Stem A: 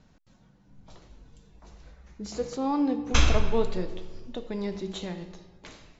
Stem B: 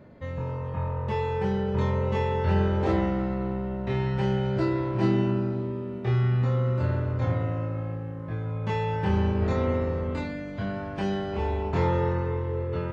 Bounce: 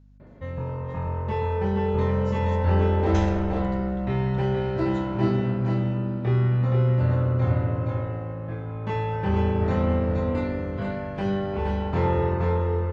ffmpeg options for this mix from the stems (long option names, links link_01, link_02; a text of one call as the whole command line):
ffmpeg -i stem1.wav -i stem2.wav -filter_complex "[0:a]aeval=exprs='val(0)+0.0141*(sin(2*PI*50*n/s)+sin(2*PI*2*50*n/s)/2+sin(2*PI*3*50*n/s)/3+sin(2*PI*4*50*n/s)/4+sin(2*PI*5*50*n/s)/5)':channel_layout=same,volume=-14.5dB[link_01];[1:a]highshelf=frequency=4000:gain=-9.5,adelay=200,volume=1dB,asplit=2[link_02][link_03];[link_03]volume=-4dB,aecho=0:1:471:1[link_04];[link_01][link_02][link_04]amix=inputs=3:normalize=0" out.wav